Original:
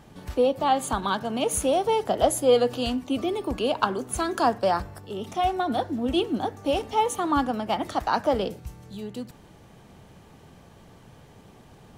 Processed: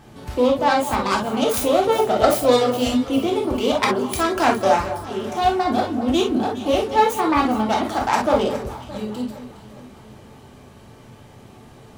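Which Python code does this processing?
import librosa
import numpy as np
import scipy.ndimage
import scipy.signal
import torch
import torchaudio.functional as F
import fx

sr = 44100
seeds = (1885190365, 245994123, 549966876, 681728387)

y = fx.self_delay(x, sr, depth_ms=0.26)
y = fx.echo_alternate(y, sr, ms=206, hz=1100.0, feedback_pct=68, wet_db=-11.0)
y = fx.rev_gated(y, sr, seeds[0], gate_ms=80, shape='flat', drr_db=-0.5)
y = y * librosa.db_to_amplitude(2.5)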